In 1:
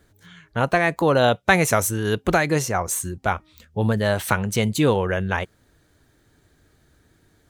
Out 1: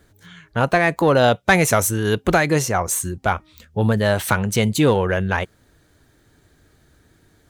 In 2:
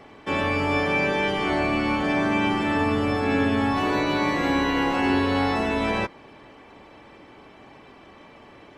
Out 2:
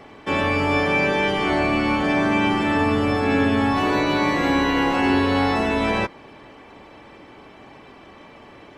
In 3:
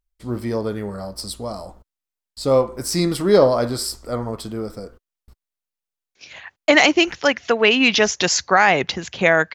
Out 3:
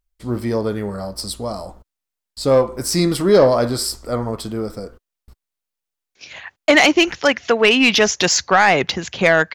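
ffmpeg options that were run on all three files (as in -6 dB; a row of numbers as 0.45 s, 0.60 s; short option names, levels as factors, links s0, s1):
-af "acontrast=43,volume=0.75"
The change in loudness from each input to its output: +2.5 LU, +3.0 LU, +1.5 LU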